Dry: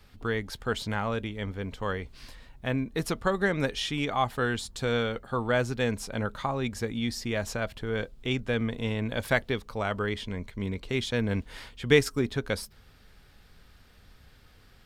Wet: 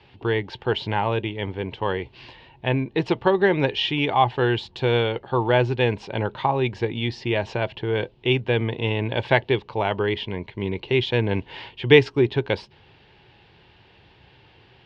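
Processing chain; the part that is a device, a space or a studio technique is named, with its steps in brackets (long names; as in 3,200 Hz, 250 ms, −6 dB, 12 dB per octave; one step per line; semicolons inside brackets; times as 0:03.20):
guitar cabinet (loudspeaker in its box 100–4,000 Hz, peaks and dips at 120 Hz +6 dB, 230 Hz −7 dB, 360 Hz +9 dB, 890 Hz +10 dB, 1,300 Hz −9 dB, 2,800 Hz +8 dB)
level +5 dB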